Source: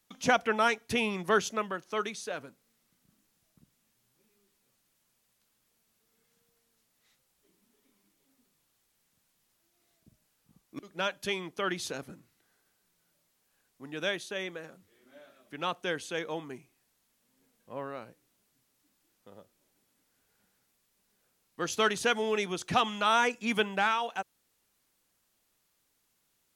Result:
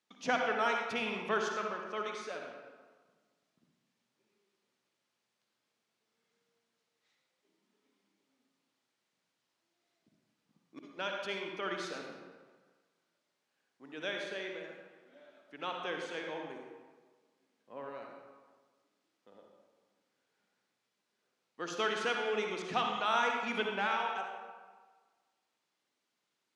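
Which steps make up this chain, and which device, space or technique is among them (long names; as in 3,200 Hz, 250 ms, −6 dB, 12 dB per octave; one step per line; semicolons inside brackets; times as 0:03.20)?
supermarket ceiling speaker (band-pass filter 230–5,400 Hz; convolution reverb RT60 1.5 s, pre-delay 51 ms, DRR 1 dB)
level −6.5 dB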